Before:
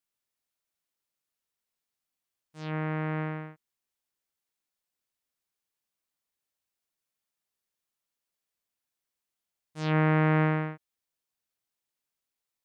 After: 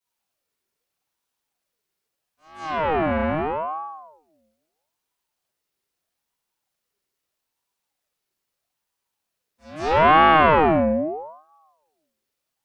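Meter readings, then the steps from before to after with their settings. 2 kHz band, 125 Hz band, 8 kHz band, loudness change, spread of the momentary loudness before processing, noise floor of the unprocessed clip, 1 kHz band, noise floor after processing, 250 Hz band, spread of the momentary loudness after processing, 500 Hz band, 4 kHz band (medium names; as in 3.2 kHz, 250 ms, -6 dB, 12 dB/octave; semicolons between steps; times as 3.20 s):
+10.5 dB, -3.5 dB, no reading, +9.0 dB, 16 LU, under -85 dBFS, +17.5 dB, -82 dBFS, +5.5 dB, 19 LU, +13.5 dB, +15.0 dB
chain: pre-echo 172 ms -16.5 dB; simulated room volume 250 m³, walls mixed, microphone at 7 m; ring modulator with a swept carrier 680 Hz, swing 45%, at 0.78 Hz; trim -5.5 dB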